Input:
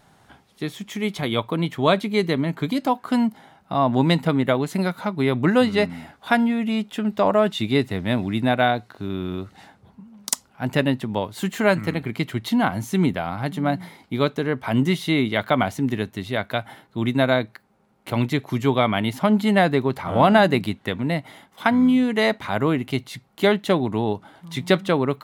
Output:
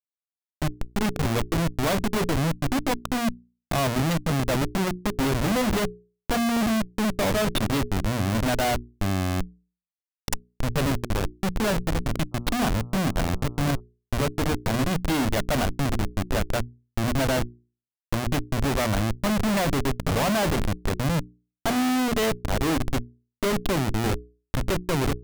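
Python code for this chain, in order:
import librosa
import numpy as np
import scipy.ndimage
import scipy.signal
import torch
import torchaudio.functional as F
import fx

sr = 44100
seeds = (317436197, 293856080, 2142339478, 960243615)

y = fx.schmitt(x, sr, flips_db=-23.5)
y = fx.hum_notches(y, sr, base_hz=60, count=7)
y = fx.dmg_buzz(y, sr, base_hz=120.0, harmonics=11, level_db=-50.0, tilt_db=-5, odd_only=False, at=(12.31, 13.79), fade=0.02)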